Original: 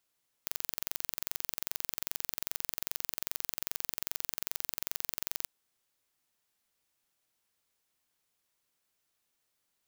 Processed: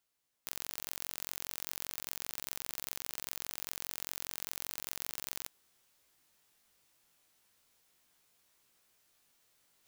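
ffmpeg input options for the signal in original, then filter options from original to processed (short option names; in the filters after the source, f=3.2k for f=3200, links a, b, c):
-f lavfi -i "aevalsrc='0.501*eq(mod(n,1960),0)':d=5.01:s=44100"
-af "flanger=delay=16:depth=4.5:speed=0.36,areverse,acompressor=mode=upward:threshold=-60dB:ratio=2.5,areverse"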